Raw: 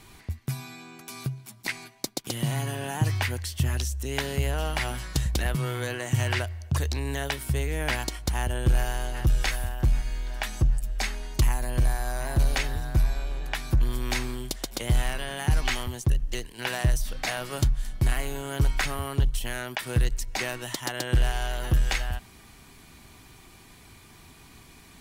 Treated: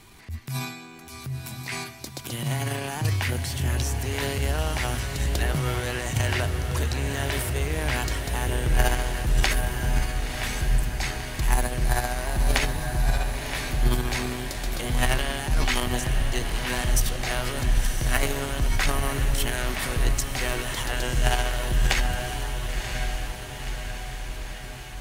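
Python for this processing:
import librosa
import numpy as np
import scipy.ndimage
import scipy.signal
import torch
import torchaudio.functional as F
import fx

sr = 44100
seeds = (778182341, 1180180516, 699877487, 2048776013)

y = fx.transient(x, sr, attack_db=-7, sustain_db=11)
y = np.clip(y, -10.0 ** (-7.0 / 20.0), 10.0 ** (-7.0 / 20.0))
y = fx.echo_diffused(y, sr, ms=1013, feedback_pct=63, wet_db=-6)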